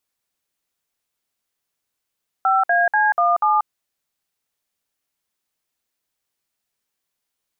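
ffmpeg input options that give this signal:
-f lavfi -i "aevalsrc='0.15*clip(min(mod(t,0.243),0.186-mod(t,0.243))/0.002,0,1)*(eq(floor(t/0.243),0)*(sin(2*PI*770*mod(t,0.243))+sin(2*PI*1336*mod(t,0.243)))+eq(floor(t/0.243),1)*(sin(2*PI*697*mod(t,0.243))+sin(2*PI*1633*mod(t,0.243)))+eq(floor(t/0.243),2)*(sin(2*PI*852*mod(t,0.243))+sin(2*PI*1633*mod(t,0.243)))+eq(floor(t/0.243),3)*(sin(2*PI*697*mod(t,0.243))+sin(2*PI*1209*mod(t,0.243)))+eq(floor(t/0.243),4)*(sin(2*PI*852*mod(t,0.243))+sin(2*PI*1209*mod(t,0.243))))':d=1.215:s=44100"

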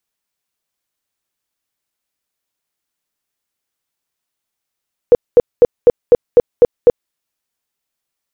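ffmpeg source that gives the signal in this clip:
-f lavfi -i "aevalsrc='0.794*sin(2*PI*483*mod(t,0.25))*lt(mod(t,0.25),14/483)':d=2:s=44100"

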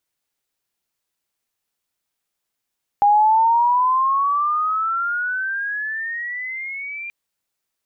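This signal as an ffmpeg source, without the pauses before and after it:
-f lavfi -i "aevalsrc='pow(10,(-10.5-17.5*t/4.08)/20)*sin(2*PI*810*4.08/log(2400/810)*(exp(log(2400/810)*t/4.08)-1))':d=4.08:s=44100"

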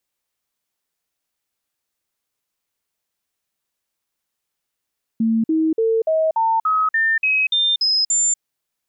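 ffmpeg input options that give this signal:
-f lavfi -i "aevalsrc='0.188*clip(min(mod(t,0.29),0.24-mod(t,0.29))/0.005,0,1)*sin(2*PI*225*pow(2,floor(t/0.29)/2)*mod(t,0.29))':d=3.19:s=44100"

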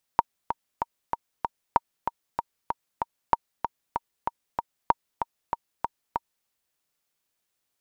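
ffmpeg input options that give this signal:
-f lavfi -i "aevalsrc='pow(10,(-4.5-8*gte(mod(t,5*60/191),60/191))/20)*sin(2*PI*934*mod(t,60/191))*exp(-6.91*mod(t,60/191)/0.03)':d=6.28:s=44100"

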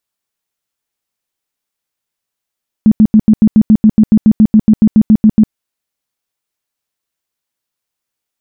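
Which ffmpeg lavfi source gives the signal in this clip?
-f lavfi -i "aevalsrc='0.794*sin(2*PI*216*mod(t,0.14))*lt(mod(t,0.14),12/216)':d=2.66:s=44100"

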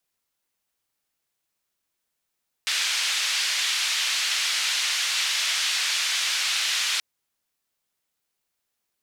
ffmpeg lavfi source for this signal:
-f lavfi -i "anoisesrc=c=white:d=4.33:r=44100:seed=1,highpass=f=2100,lowpass=f=4500,volume=-11dB"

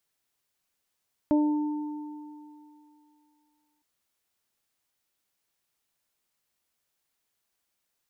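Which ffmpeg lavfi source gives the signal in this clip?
-f lavfi -i "aevalsrc='0.119*pow(10,-3*t/2.53)*sin(2*PI*299*t)+0.0531*pow(10,-3*t/0.46)*sin(2*PI*598*t)+0.0224*pow(10,-3*t/3.21)*sin(2*PI*897*t)':d=2.51:s=44100"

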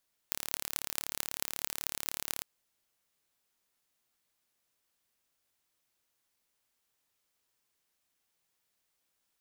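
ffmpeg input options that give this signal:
-f lavfi -i "aevalsrc='0.708*eq(mod(n,1218),0)*(0.5+0.5*eq(mod(n,9744),0))':d=2.1:s=44100"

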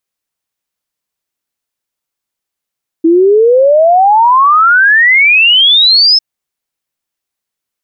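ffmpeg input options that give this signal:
-f lavfi -i "aevalsrc='0.668*clip(min(t,3.15-t)/0.01,0,1)*sin(2*PI*320*3.15/log(5300/320)*(exp(log(5300/320)*t/3.15)-1))':d=3.15:s=44100"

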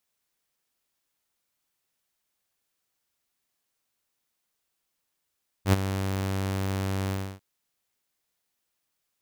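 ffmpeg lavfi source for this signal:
-f lavfi -i "aevalsrc='0.237*(2*mod(96.5*t,1)-1)':d=1.747:s=44100,afade=t=in:d=0.079,afade=t=out:st=0.079:d=0.021:silence=0.266,afade=t=out:st=1.46:d=0.287"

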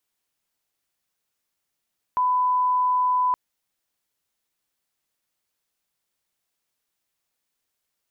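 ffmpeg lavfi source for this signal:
-f lavfi -i "sine=f=1000:d=1.17:r=44100,volume=0.06dB"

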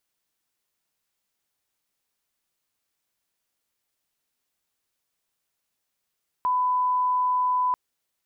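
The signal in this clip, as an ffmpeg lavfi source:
-f lavfi -i "sine=f=1000:d=1.29:r=44100,volume=-1.94dB"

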